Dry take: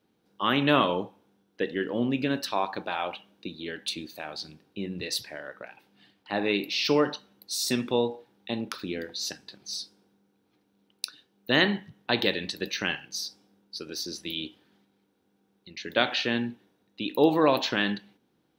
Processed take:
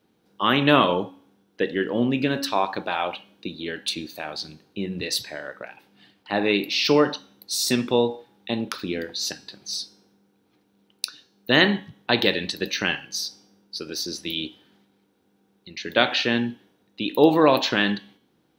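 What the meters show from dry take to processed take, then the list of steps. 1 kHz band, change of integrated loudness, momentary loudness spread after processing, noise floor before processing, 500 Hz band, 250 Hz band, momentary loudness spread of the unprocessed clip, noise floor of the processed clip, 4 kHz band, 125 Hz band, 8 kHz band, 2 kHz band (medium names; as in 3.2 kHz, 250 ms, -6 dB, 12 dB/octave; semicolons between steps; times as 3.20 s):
+5.0 dB, +5.0 dB, 17 LU, -71 dBFS, +5.0 dB, +5.0 dB, 17 LU, -66 dBFS, +5.0 dB, +5.0 dB, +5.0 dB, +5.0 dB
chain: de-hum 277.6 Hz, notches 29; trim +5 dB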